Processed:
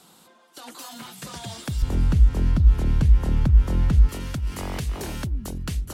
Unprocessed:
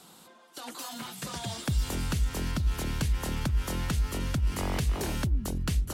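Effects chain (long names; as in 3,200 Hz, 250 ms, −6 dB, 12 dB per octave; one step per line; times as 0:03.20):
0:01.82–0:04.09: spectral tilt −3 dB per octave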